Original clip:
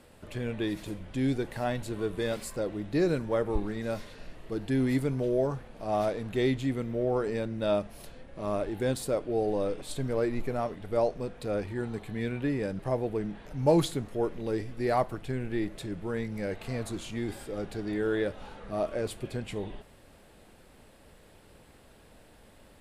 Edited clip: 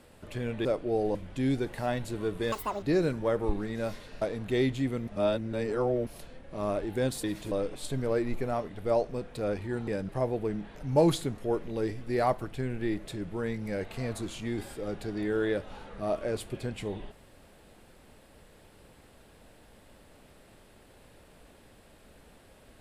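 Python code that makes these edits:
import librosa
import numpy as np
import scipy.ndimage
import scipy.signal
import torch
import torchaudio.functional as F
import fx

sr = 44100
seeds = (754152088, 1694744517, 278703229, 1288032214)

y = fx.edit(x, sr, fx.swap(start_s=0.65, length_s=0.28, other_s=9.08, other_length_s=0.5),
    fx.speed_span(start_s=2.3, length_s=0.59, speed=1.93),
    fx.cut(start_s=4.28, length_s=1.78),
    fx.reverse_span(start_s=6.92, length_s=0.99),
    fx.cut(start_s=11.94, length_s=0.64), tone=tone)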